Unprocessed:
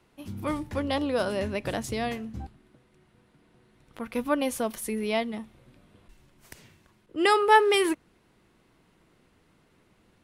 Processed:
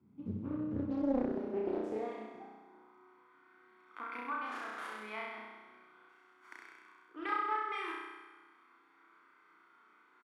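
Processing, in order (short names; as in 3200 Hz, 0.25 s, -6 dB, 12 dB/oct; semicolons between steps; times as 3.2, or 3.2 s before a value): bell 1600 Hz +7.5 dB 0.24 oct; comb 0.9 ms, depth 64%; compressor 6:1, threshold -33 dBFS, peak gain reduction 19 dB; 4.46–4.96 Schmitt trigger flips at -38.5 dBFS; high-pass sweep 100 Hz -> 310 Hz, 0.8–1.32; on a send: flutter echo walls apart 5.6 m, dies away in 1.3 s; on the sum: band-pass sweep 230 Hz -> 1400 Hz, 0.79–3.52; Doppler distortion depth 0.72 ms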